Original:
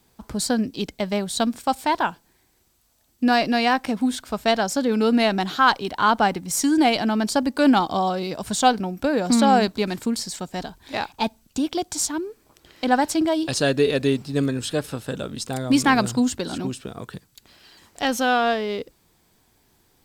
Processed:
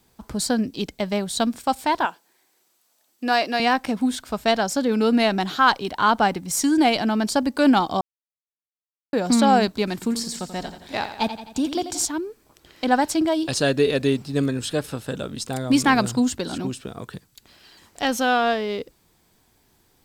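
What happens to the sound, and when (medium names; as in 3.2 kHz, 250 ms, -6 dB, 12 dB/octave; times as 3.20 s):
2.05–3.60 s: high-pass 380 Hz
8.01–9.13 s: mute
9.93–12.05 s: feedback delay 86 ms, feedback 53%, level -10.5 dB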